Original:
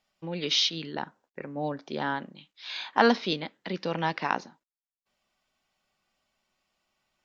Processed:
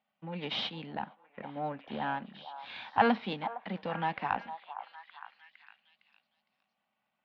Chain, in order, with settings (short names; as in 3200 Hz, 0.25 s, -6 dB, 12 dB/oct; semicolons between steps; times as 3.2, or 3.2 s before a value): half-wave gain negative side -7 dB; speaker cabinet 120–3200 Hz, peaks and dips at 210 Hz +7 dB, 370 Hz -8 dB, 780 Hz +6 dB; delay with a stepping band-pass 0.459 s, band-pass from 850 Hz, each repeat 0.7 oct, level -9.5 dB; gain -2.5 dB